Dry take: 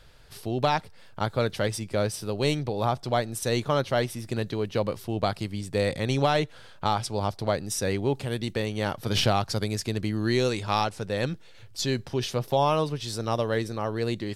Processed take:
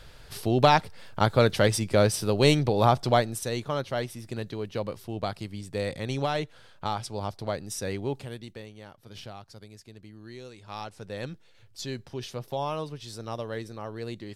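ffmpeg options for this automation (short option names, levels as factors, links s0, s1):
-af "volume=6.68,afade=t=out:st=3.05:d=0.45:silence=0.316228,afade=t=out:st=8.13:d=0.28:silence=0.473151,afade=t=out:st=8.41:d=0.46:silence=0.398107,afade=t=in:st=10.56:d=0.54:silence=0.266073"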